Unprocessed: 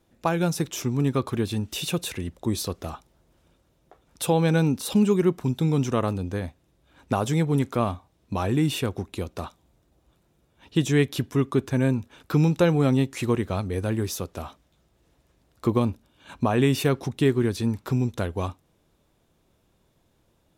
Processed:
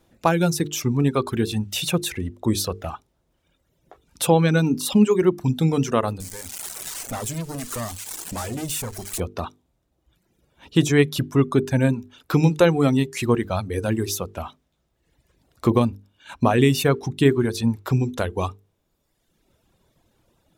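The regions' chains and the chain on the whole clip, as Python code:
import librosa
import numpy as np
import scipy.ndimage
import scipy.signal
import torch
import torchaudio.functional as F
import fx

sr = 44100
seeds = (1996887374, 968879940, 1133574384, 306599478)

y = fx.chain(x, sr, fx.crossing_spikes(level_db=-18.0),
    fx.peak_eq(hz=8000.0, db=8.0, octaves=1.2),
    fx.tube_stage(drive_db=30.0, bias=0.7), at=(6.2, 9.2))
y = fx.dereverb_blind(y, sr, rt60_s=1.3)
y = fx.hum_notches(y, sr, base_hz=50, count=9)
y = y * 10.0 ** (5.5 / 20.0)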